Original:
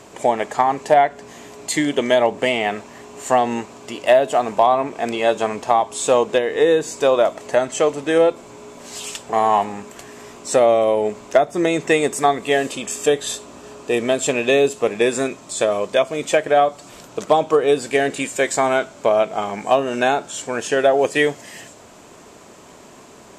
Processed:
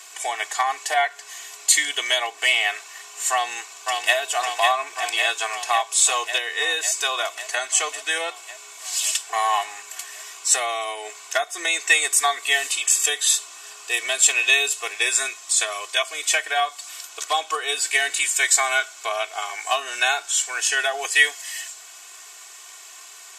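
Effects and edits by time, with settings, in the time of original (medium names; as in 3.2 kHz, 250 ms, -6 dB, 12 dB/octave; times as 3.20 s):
3.31–4.16 s: echo throw 550 ms, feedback 75%, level -4 dB
whole clip: high-pass 1.3 kHz 12 dB/octave; tilt EQ +2.5 dB/octave; comb 2.7 ms, depth 99%; trim -1 dB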